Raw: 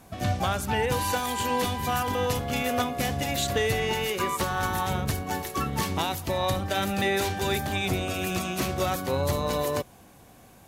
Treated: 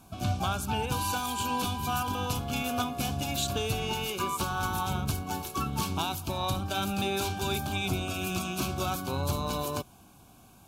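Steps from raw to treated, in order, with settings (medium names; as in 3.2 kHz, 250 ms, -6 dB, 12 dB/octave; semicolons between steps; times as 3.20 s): Butterworth band-stop 1.9 kHz, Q 2.7; peaking EQ 510 Hz -10 dB 0.51 oct; trim -2 dB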